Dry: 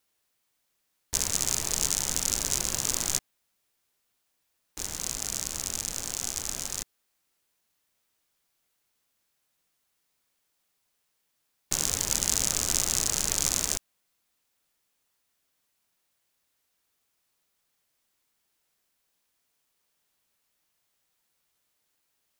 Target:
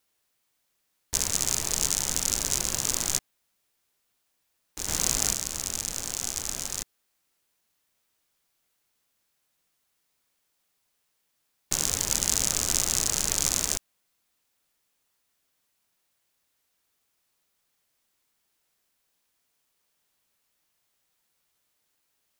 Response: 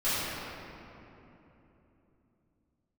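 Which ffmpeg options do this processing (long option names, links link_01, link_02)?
-filter_complex "[0:a]asplit=3[link_01][link_02][link_03];[link_01]afade=type=out:start_time=4.87:duration=0.02[link_04];[link_02]acontrast=84,afade=type=in:start_time=4.87:duration=0.02,afade=type=out:start_time=5.32:duration=0.02[link_05];[link_03]afade=type=in:start_time=5.32:duration=0.02[link_06];[link_04][link_05][link_06]amix=inputs=3:normalize=0,volume=1dB"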